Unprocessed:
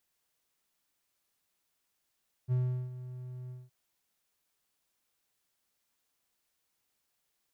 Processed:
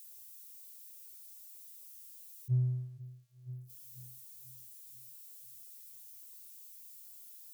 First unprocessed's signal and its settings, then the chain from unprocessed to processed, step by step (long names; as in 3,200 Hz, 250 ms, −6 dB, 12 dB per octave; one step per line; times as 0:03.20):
note with an ADSR envelope triangle 126 Hz, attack 40 ms, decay 376 ms, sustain −15 dB, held 1.02 s, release 199 ms −23 dBFS
spike at every zero crossing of −35 dBFS
on a send: feedback echo with a low-pass in the loop 488 ms, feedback 55%, low-pass 1,200 Hz, level −7 dB
on the sum: every bin expanded away from the loudest bin 1.5 to 1